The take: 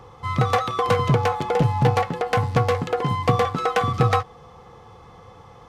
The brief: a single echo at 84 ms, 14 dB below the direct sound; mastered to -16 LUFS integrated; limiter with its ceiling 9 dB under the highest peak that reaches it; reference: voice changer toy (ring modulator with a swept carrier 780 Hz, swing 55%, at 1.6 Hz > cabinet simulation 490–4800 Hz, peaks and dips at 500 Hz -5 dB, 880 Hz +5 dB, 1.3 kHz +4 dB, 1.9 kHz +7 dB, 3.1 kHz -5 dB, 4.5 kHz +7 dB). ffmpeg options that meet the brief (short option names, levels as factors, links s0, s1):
-af "alimiter=limit=0.178:level=0:latency=1,aecho=1:1:84:0.2,aeval=exprs='val(0)*sin(2*PI*780*n/s+780*0.55/1.6*sin(2*PI*1.6*n/s))':c=same,highpass=490,equalizer=f=500:t=q:w=4:g=-5,equalizer=f=880:t=q:w=4:g=5,equalizer=f=1300:t=q:w=4:g=4,equalizer=f=1900:t=q:w=4:g=7,equalizer=f=3100:t=q:w=4:g=-5,equalizer=f=4500:t=q:w=4:g=7,lowpass=f=4800:w=0.5412,lowpass=f=4800:w=1.3066,volume=2.66"